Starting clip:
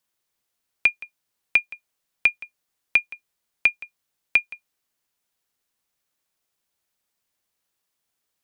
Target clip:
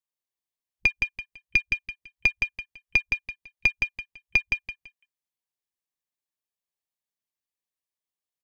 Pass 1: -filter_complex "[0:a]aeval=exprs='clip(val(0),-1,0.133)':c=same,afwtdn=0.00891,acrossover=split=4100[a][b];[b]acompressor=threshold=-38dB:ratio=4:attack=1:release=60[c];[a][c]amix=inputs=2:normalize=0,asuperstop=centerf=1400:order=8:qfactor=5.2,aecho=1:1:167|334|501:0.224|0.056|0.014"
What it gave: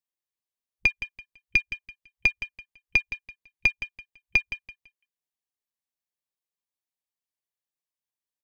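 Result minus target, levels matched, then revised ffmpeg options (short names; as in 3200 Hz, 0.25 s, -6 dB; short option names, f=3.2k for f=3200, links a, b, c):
echo-to-direct -8.5 dB
-filter_complex "[0:a]aeval=exprs='clip(val(0),-1,0.133)':c=same,afwtdn=0.00891,acrossover=split=4100[a][b];[b]acompressor=threshold=-38dB:ratio=4:attack=1:release=60[c];[a][c]amix=inputs=2:normalize=0,asuperstop=centerf=1400:order=8:qfactor=5.2,aecho=1:1:167|334|501:0.596|0.149|0.0372"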